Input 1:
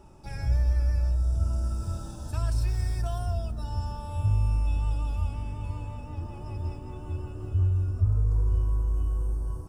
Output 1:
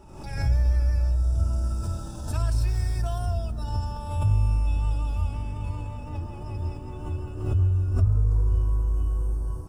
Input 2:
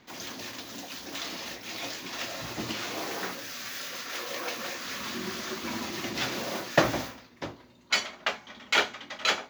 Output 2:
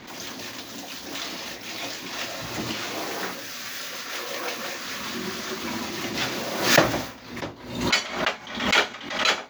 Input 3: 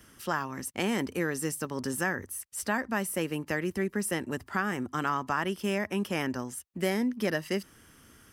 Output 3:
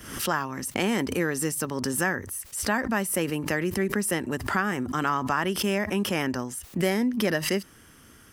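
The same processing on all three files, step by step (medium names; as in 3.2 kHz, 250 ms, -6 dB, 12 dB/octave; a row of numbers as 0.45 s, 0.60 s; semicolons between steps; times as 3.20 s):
swell ahead of each attack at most 75 dB/s; normalise loudness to -27 LUFS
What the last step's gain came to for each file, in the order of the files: +2.0 dB, +3.5 dB, +3.5 dB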